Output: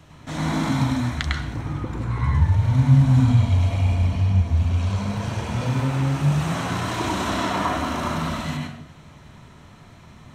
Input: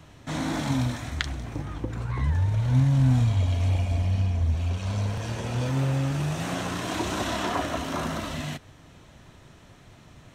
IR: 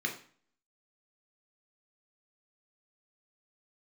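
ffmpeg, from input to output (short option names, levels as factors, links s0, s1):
-filter_complex "[0:a]asplit=2[s0][s1];[1:a]atrim=start_sample=2205,asetrate=26460,aresample=44100,adelay=101[s2];[s1][s2]afir=irnorm=-1:irlink=0,volume=0.473[s3];[s0][s3]amix=inputs=2:normalize=0"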